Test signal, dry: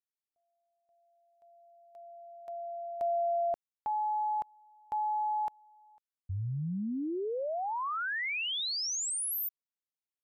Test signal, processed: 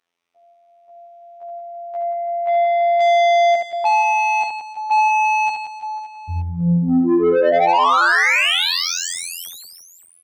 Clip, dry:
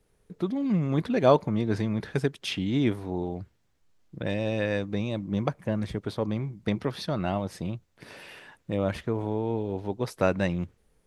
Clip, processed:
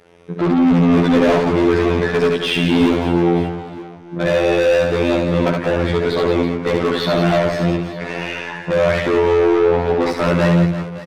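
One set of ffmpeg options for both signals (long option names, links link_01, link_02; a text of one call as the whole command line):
ffmpeg -i in.wav -filter_complex "[0:a]aemphasis=mode=reproduction:type=75fm,acrossover=split=390[link_01][link_02];[link_02]acompressor=threshold=-35dB:ratio=2.5:attack=73:release=38:knee=2.83:detection=peak[link_03];[link_01][link_03]amix=inputs=2:normalize=0,afftfilt=real='hypot(re,im)*cos(PI*b)':imag='0':win_size=2048:overlap=0.75,asplit=2[link_04][link_05];[link_05]highpass=frequency=720:poles=1,volume=37dB,asoftclip=type=tanh:threshold=-7.5dB[link_06];[link_04][link_06]amix=inputs=2:normalize=0,lowpass=frequency=3600:poles=1,volume=-6dB,aecho=1:1:70|175|332.5|568.8|923.1:0.631|0.398|0.251|0.158|0.1,volume=-1dB" out.wav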